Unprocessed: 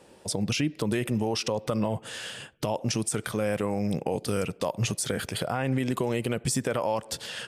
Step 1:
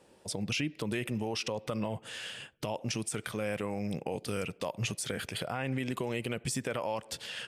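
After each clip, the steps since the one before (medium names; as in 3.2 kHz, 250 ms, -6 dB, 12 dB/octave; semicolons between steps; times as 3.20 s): dynamic bell 2.5 kHz, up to +6 dB, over -49 dBFS, Q 1.3; trim -7 dB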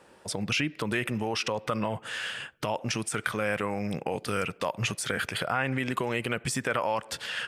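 peaking EQ 1.4 kHz +9.5 dB 1.4 oct; trim +2.5 dB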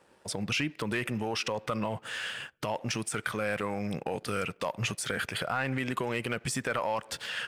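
waveshaping leveller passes 1; trim -5.5 dB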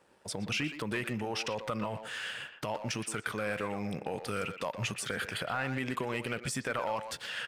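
speakerphone echo 120 ms, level -8 dB; trim -3 dB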